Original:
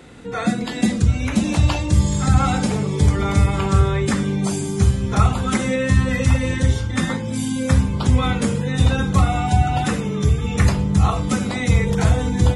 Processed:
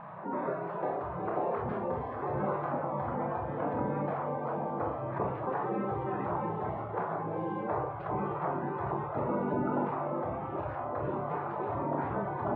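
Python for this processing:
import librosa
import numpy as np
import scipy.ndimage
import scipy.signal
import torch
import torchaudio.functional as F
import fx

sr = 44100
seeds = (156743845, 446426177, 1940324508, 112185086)

y = scipy.signal.sosfilt(scipy.signal.butter(4, 270.0, 'highpass', fs=sr, output='sos'), x)
y = fx.spec_gate(y, sr, threshold_db=-15, keep='weak')
y = scipy.signal.sosfilt(scipy.signal.butter(4, 1000.0, 'lowpass', fs=sr, output='sos'), y)
y = fx.room_early_taps(y, sr, ms=(29, 44), db=(-6.5, -8.5))
y = fx.env_flatten(y, sr, amount_pct=50)
y = y * 10.0 ** (3.0 / 20.0)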